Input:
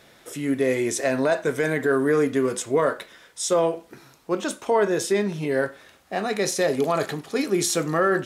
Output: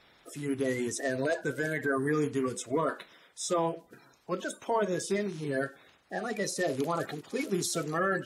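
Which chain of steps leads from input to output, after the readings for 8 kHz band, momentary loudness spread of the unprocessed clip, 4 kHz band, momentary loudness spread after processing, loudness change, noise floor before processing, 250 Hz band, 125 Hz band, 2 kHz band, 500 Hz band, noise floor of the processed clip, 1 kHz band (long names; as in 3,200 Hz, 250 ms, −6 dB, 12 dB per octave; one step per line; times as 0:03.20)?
−8.0 dB, 9 LU, −8.0 dB, 9 LU, −8.0 dB, −54 dBFS, −7.5 dB, −5.5 dB, −6.0 dB, −9.5 dB, −62 dBFS, −6.5 dB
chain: spectral magnitudes quantised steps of 30 dB
level −7.5 dB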